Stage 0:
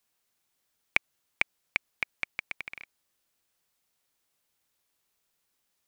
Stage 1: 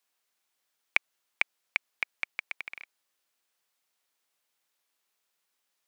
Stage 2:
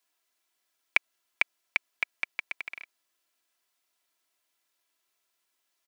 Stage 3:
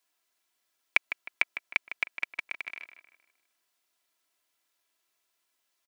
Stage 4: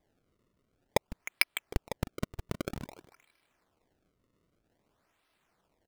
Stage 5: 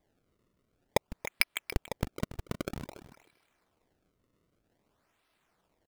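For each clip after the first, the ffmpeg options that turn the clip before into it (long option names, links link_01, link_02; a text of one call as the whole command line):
ffmpeg -i in.wav -af "highpass=frequency=590:poles=1,highshelf=frequency=5500:gain=-4.5,volume=1dB" out.wav
ffmpeg -i in.wav -af "aecho=1:1:3:0.52" out.wav
ffmpeg -i in.wav -filter_complex "[0:a]asplit=2[link_01][link_02];[link_02]adelay=155,lowpass=frequency=3100:poles=1,volume=-10dB,asplit=2[link_03][link_04];[link_04]adelay=155,lowpass=frequency=3100:poles=1,volume=0.43,asplit=2[link_05][link_06];[link_06]adelay=155,lowpass=frequency=3100:poles=1,volume=0.43,asplit=2[link_07][link_08];[link_08]adelay=155,lowpass=frequency=3100:poles=1,volume=0.43,asplit=2[link_09][link_10];[link_10]adelay=155,lowpass=frequency=3100:poles=1,volume=0.43[link_11];[link_01][link_03][link_05][link_07][link_09][link_11]amix=inputs=6:normalize=0" out.wav
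ffmpeg -i in.wav -filter_complex "[0:a]asplit=2[link_01][link_02];[link_02]acompressor=threshold=-34dB:ratio=6,volume=-3dB[link_03];[link_01][link_03]amix=inputs=2:normalize=0,acrusher=samples=31:mix=1:aa=0.000001:lfo=1:lforange=49.6:lforate=0.52,volume=-1.5dB" out.wav
ffmpeg -i in.wav -af "aecho=1:1:284:0.178" out.wav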